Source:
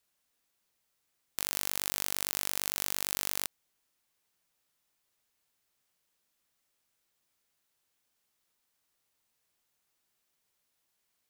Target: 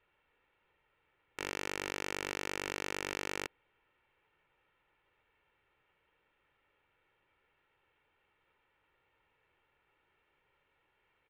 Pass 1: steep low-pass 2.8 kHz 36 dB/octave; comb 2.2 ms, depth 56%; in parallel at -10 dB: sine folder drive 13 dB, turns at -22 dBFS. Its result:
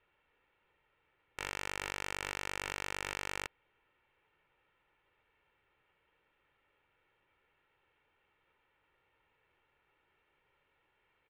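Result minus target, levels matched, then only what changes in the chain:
250 Hz band -7.0 dB
add after steep low-pass: dynamic bell 330 Hz, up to +4 dB, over -59 dBFS, Q 0.94

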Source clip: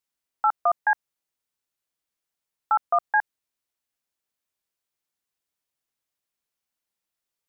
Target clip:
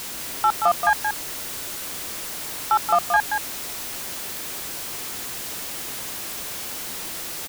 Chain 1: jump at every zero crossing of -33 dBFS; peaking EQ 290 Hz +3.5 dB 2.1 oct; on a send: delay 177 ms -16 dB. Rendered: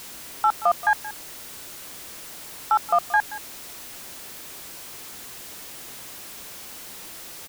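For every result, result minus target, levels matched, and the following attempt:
echo-to-direct -10 dB; jump at every zero crossing: distortion -6 dB
jump at every zero crossing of -33 dBFS; peaking EQ 290 Hz +3.5 dB 2.1 oct; on a send: delay 177 ms -6 dB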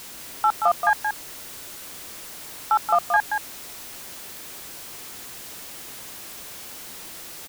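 jump at every zero crossing: distortion -6 dB
jump at every zero crossing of -26 dBFS; peaking EQ 290 Hz +3.5 dB 2.1 oct; on a send: delay 177 ms -6 dB

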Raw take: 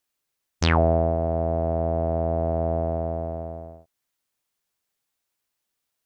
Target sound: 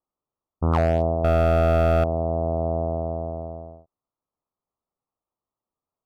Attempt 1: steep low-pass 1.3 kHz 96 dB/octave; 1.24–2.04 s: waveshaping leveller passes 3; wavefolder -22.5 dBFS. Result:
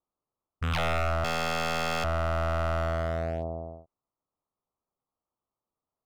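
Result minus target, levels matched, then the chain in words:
wavefolder: distortion +27 dB
steep low-pass 1.3 kHz 96 dB/octave; 1.24–2.04 s: waveshaping leveller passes 3; wavefolder -11 dBFS

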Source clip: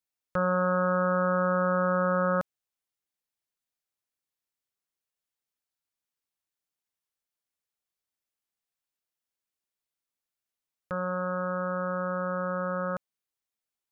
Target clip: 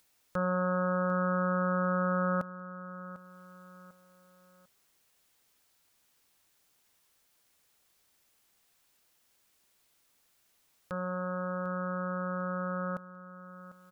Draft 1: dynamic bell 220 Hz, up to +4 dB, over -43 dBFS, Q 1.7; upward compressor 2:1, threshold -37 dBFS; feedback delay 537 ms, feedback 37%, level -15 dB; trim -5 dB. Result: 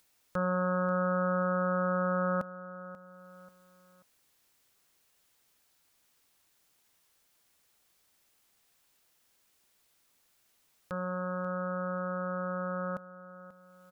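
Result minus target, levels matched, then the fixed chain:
echo 211 ms early
dynamic bell 220 Hz, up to +4 dB, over -43 dBFS, Q 1.7; upward compressor 2:1, threshold -37 dBFS; feedback delay 748 ms, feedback 37%, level -15 dB; trim -5 dB

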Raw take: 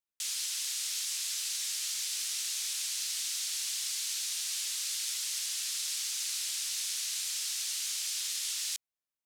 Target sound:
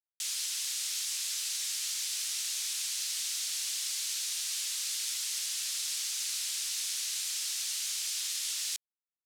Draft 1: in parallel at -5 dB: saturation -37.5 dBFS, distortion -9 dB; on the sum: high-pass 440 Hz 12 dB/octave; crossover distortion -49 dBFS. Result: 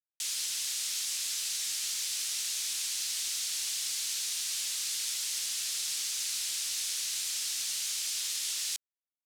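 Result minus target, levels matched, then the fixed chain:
crossover distortion: distortion +9 dB; saturation: distortion -5 dB
in parallel at -5 dB: saturation -49.5 dBFS, distortion -4 dB; on the sum: high-pass 440 Hz 12 dB/octave; crossover distortion -60 dBFS

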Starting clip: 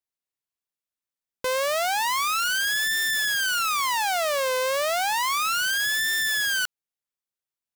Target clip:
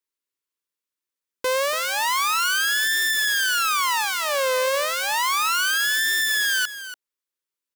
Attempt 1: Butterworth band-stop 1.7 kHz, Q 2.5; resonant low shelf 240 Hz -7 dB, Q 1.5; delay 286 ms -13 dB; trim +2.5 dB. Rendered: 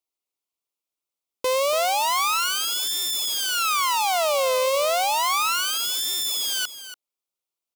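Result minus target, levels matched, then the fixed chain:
2 kHz band -8.0 dB
Butterworth band-stop 710 Hz, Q 2.5; resonant low shelf 240 Hz -7 dB, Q 1.5; delay 286 ms -13 dB; trim +2.5 dB

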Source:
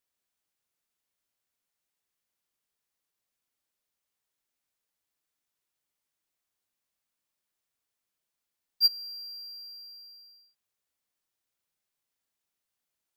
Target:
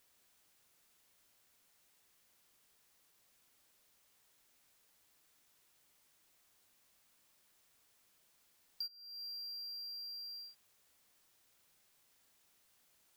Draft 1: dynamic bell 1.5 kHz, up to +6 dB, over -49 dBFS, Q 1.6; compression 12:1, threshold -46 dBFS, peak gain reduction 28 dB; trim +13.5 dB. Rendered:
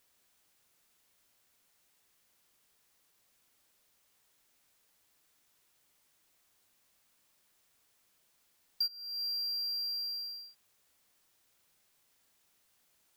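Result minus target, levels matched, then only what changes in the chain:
compression: peak gain reduction -10 dB
change: compression 12:1, threshold -57 dBFS, peak gain reduction 38.5 dB

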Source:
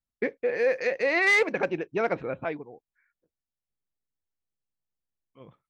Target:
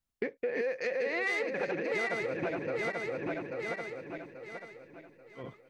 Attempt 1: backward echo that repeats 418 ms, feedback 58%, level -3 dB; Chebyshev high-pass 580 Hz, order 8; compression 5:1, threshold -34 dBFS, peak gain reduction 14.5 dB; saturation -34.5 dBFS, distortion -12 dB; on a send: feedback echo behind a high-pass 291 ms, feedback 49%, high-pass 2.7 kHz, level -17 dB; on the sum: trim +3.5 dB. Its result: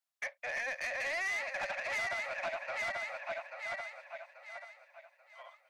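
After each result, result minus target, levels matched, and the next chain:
saturation: distortion +15 dB; 500 Hz band -7.0 dB
backward echo that repeats 418 ms, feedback 58%, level -3 dB; Chebyshev high-pass 580 Hz, order 8; compression 5:1, threshold -34 dBFS, peak gain reduction 14.5 dB; saturation -23.5 dBFS, distortion -28 dB; on a send: feedback echo behind a high-pass 291 ms, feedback 49%, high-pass 2.7 kHz, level -17 dB; on the sum: trim +3.5 dB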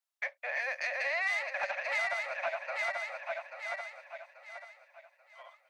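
500 Hz band -7.5 dB
backward echo that repeats 418 ms, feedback 58%, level -3 dB; compression 5:1, threshold -34 dBFS, peak gain reduction 15.5 dB; saturation -23.5 dBFS, distortion -27 dB; on a send: feedback echo behind a high-pass 291 ms, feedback 49%, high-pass 2.7 kHz, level -17 dB; on the sum: trim +3.5 dB

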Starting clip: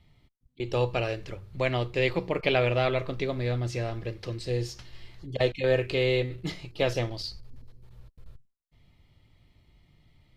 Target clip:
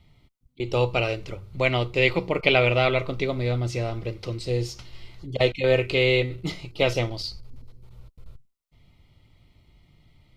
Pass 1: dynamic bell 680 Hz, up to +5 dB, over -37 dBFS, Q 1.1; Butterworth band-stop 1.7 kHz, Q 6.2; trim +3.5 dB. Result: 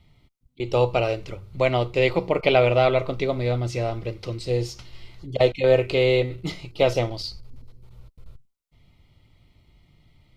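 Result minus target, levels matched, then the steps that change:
2 kHz band -5.0 dB
change: dynamic bell 2.4 kHz, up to +5 dB, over -37 dBFS, Q 1.1

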